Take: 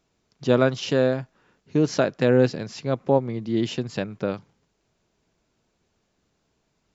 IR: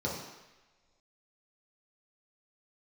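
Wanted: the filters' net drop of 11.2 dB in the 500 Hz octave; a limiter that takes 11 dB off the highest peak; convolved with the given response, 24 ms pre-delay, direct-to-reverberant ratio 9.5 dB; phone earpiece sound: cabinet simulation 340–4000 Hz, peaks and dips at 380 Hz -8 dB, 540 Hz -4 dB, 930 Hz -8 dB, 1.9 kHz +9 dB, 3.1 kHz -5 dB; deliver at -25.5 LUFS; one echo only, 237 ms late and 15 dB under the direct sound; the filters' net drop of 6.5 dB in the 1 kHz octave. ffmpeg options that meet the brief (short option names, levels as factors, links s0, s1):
-filter_complex "[0:a]equalizer=f=500:t=o:g=-5.5,equalizer=f=1000:t=o:g=-3.5,alimiter=limit=0.106:level=0:latency=1,aecho=1:1:237:0.178,asplit=2[s0][s1];[1:a]atrim=start_sample=2205,adelay=24[s2];[s1][s2]afir=irnorm=-1:irlink=0,volume=0.158[s3];[s0][s3]amix=inputs=2:normalize=0,highpass=340,equalizer=f=380:t=q:w=4:g=-8,equalizer=f=540:t=q:w=4:g=-4,equalizer=f=930:t=q:w=4:g=-8,equalizer=f=1900:t=q:w=4:g=9,equalizer=f=3100:t=q:w=4:g=-5,lowpass=f=4000:w=0.5412,lowpass=f=4000:w=1.3066,volume=3.98"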